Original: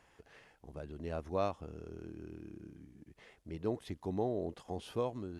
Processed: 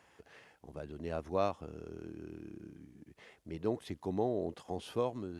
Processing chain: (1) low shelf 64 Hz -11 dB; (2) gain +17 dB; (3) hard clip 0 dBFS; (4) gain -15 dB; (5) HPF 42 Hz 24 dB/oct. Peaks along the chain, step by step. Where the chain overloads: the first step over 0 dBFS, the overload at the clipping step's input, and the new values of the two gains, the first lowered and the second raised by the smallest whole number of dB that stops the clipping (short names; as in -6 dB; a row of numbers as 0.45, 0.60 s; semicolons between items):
-20.0, -3.0, -3.0, -18.0, -18.0 dBFS; no overload